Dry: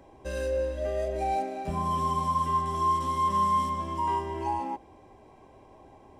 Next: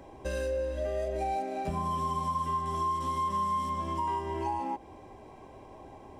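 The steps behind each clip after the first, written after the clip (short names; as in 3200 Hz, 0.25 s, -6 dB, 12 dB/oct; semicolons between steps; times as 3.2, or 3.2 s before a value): compressor 3:1, threshold -35 dBFS, peak gain reduction 10 dB; gain +4 dB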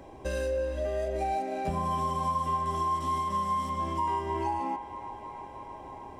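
band-limited delay 0.314 s, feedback 81%, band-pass 1300 Hz, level -13 dB; gain +1.5 dB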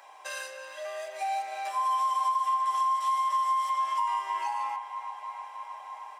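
HPF 880 Hz 24 dB/oct; comb 6.7 ms, depth 35%; compressor, threshold -29 dBFS, peak gain reduction 5.5 dB; gain +5 dB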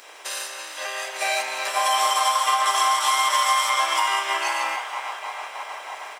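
spectral limiter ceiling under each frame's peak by 21 dB; on a send: frequency-shifting echo 0.164 s, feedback 60%, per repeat +130 Hz, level -12 dB; on the sum: gain +6.5 dB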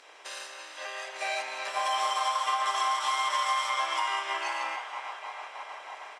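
air absorption 65 m; gain -7 dB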